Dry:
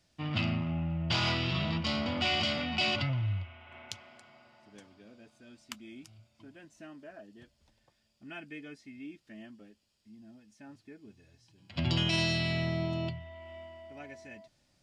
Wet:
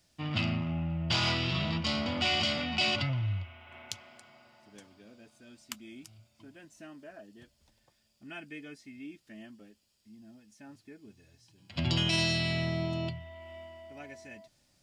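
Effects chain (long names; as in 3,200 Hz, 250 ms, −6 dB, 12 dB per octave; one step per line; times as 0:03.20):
high-shelf EQ 7,500 Hz +10 dB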